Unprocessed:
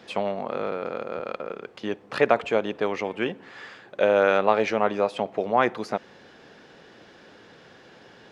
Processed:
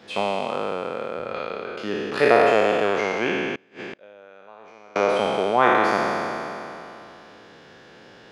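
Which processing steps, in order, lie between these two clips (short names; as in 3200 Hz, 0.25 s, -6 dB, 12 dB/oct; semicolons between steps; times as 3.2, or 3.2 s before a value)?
spectral trails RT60 2.95 s; 3.55–4.96 flipped gate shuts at -19 dBFS, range -28 dB; gain -1 dB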